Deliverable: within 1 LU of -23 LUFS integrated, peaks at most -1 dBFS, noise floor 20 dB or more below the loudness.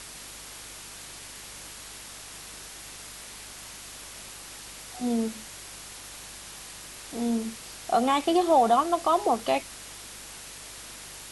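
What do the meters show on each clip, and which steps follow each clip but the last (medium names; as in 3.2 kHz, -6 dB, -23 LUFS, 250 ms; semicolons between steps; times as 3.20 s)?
hum 50 Hz; highest harmonic 400 Hz; hum level -55 dBFS; noise floor -44 dBFS; noise floor target -48 dBFS; loudness -27.5 LUFS; peak level -11.5 dBFS; loudness target -23.0 LUFS
-> de-hum 50 Hz, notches 8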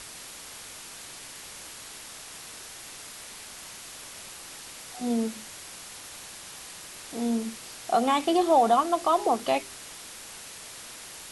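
hum not found; noise floor -44 dBFS; noise floor target -49 dBFS
-> noise reduction 6 dB, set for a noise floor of -44 dBFS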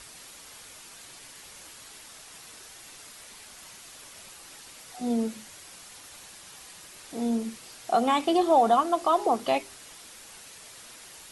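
noise floor -48 dBFS; loudness -25.5 LUFS; peak level -11.5 dBFS; loudness target -23.0 LUFS
-> trim +2.5 dB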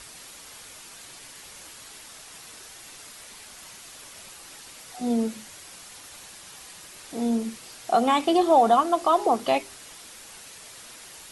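loudness -23.0 LUFS; peak level -9.0 dBFS; noise floor -46 dBFS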